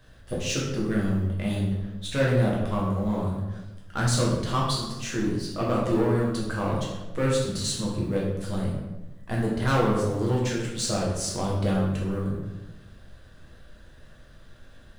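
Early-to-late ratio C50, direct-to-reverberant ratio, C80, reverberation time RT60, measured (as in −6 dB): 2.0 dB, −4.5 dB, 5.0 dB, 1.1 s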